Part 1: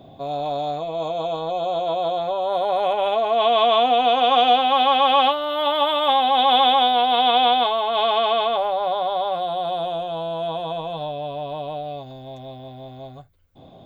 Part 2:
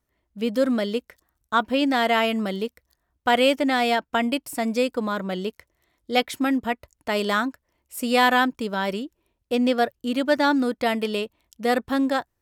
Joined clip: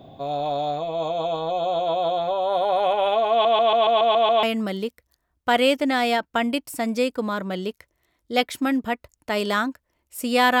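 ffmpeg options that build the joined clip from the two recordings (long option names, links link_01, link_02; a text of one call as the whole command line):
ffmpeg -i cue0.wav -i cue1.wav -filter_complex "[0:a]apad=whole_dur=10.6,atrim=end=10.6,asplit=8[link_01][link_02][link_03][link_04][link_05][link_06][link_07][link_08];[link_01]atrim=end=3.452[link_09];[link_02]atrim=start=3.308:end=3.452[link_10];[link_03]atrim=start=3.308:end=3.452[link_11];[link_04]atrim=start=3.308:end=3.452[link_12];[link_05]atrim=start=3.308:end=3.452[link_13];[link_06]atrim=start=3.308:end=3.452[link_14];[link_07]atrim=start=3.308:end=3.452[link_15];[link_08]atrim=start=3.308:end=3.452[link_16];[1:a]atrim=start=2.218:end=8.39[link_17];[link_09][link_10]acrossfade=duration=0.004:curve1=hsin:curve2=hsin[link_18];[link_18][link_11]acrossfade=duration=0.004:curve1=hsin:curve2=hsin[link_19];[link_19][link_12]acrossfade=duration=0.004:curve1=hsin:curve2=hsin[link_20];[link_20][link_13]acrossfade=duration=0.004:curve1=hsin:curve2=hsin[link_21];[link_21][link_14]acrossfade=duration=0.004:curve1=hsin:curve2=hsin[link_22];[link_22][link_15]acrossfade=duration=0.004:curve1=hsin:curve2=hsin[link_23];[link_23][link_16]acrossfade=duration=0.004:curve1=hsin:curve2=hsin[link_24];[link_24][link_17]acrossfade=duration=0.004:curve1=hsin:curve2=hsin" out.wav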